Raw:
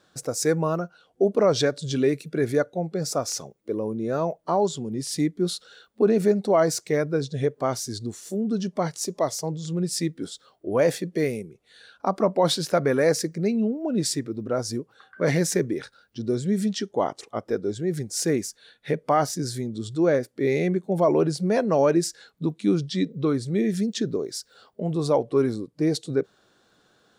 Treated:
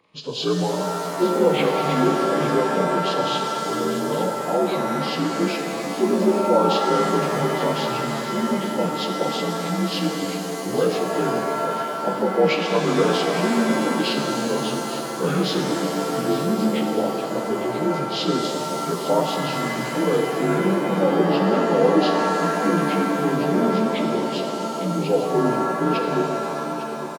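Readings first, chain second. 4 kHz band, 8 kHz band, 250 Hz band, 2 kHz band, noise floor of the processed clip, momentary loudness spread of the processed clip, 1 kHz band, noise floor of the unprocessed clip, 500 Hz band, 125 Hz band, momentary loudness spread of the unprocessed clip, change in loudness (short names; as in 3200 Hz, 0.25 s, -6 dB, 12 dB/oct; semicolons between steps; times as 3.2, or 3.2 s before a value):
+6.0 dB, -2.5 dB, +3.5 dB, +7.5 dB, -28 dBFS, 6 LU, +8.0 dB, -64 dBFS, +2.5 dB, +1.0 dB, 10 LU, +3.5 dB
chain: inharmonic rescaling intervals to 82%; echo 0.854 s -12.5 dB; shimmer reverb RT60 3.3 s, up +7 st, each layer -2 dB, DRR 3 dB; gain +1 dB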